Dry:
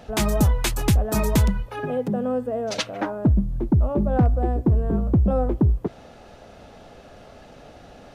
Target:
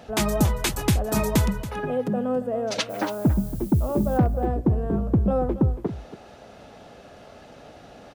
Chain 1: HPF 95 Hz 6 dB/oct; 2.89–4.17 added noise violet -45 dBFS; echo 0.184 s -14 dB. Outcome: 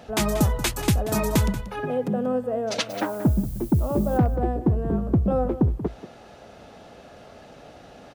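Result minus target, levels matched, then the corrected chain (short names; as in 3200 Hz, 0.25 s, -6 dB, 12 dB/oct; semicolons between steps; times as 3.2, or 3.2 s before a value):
echo 95 ms early
HPF 95 Hz 6 dB/oct; 2.89–4.17 added noise violet -45 dBFS; echo 0.279 s -14 dB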